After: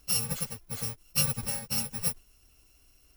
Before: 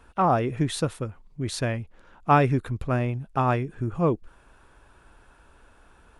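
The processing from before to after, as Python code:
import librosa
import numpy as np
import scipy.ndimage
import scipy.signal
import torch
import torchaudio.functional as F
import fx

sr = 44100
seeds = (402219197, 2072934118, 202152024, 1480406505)

y = fx.bit_reversed(x, sr, seeds[0], block=128)
y = fx.stretch_vocoder_free(y, sr, factor=0.51)
y = fx.quant_float(y, sr, bits=2)
y = F.gain(torch.from_numpy(y), -3.0).numpy()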